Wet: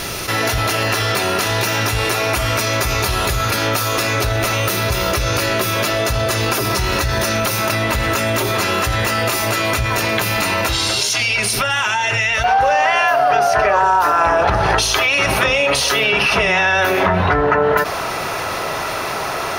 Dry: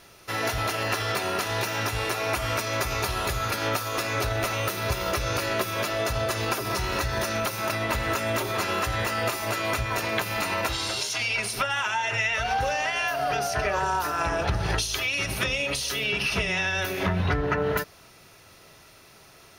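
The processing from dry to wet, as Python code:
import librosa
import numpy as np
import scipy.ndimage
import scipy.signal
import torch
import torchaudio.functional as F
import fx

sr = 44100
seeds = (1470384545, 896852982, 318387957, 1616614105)

y = fx.peak_eq(x, sr, hz=910.0, db=fx.steps((0.0, -3.0), (12.44, 13.0)), octaves=2.6)
y = fx.env_flatten(y, sr, amount_pct=70)
y = y * 10.0 ** (-1.0 / 20.0)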